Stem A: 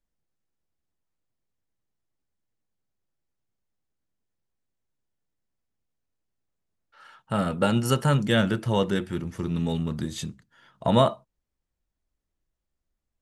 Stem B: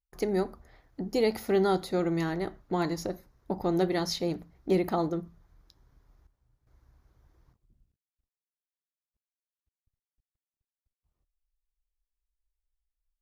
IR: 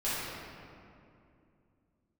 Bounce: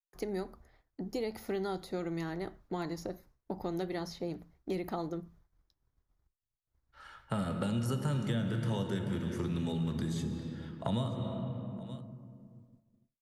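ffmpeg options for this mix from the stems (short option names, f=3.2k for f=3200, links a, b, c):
-filter_complex "[0:a]acrossover=split=320|3000[a][b][c];[b]acompressor=threshold=-29dB:ratio=6[d];[a][d][c]amix=inputs=3:normalize=0,bandreject=f=2.7k:w=20,volume=-3dB,asplit=3[e][f][g];[f]volume=-13dB[h];[g]volume=-22dB[i];[1:a]volume=-4.5dB[j];[2:a]atrim=start_sample=2205[k];[h][k]afir=irnorm=-1:irlink=0[l];[i]aecho=0:1:926:1[m];[e][j][l][m]amix=inputs=4:normalize=0,agate=range=-33dB:threshold=-55dB:ratio=3:detection=peak,acrossover=split=110|1700[n][o][p];[n]acompressor=threshold=-40dB:ratio=4[q];[o]acompressor=threshold=-33dB:ratio=4[r];[p]acompressor=threshold=-48dB:ratio=4[s];[q][r][s]amix=inputs=3:normalize=0"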